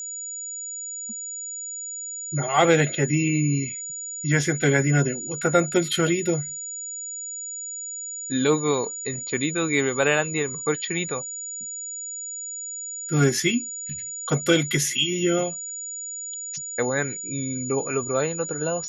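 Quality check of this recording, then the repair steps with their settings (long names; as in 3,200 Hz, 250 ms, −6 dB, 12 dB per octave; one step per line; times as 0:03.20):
whistle 6,900 Hz −31 dBFS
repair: notch filter 6,900 Hz, Q 30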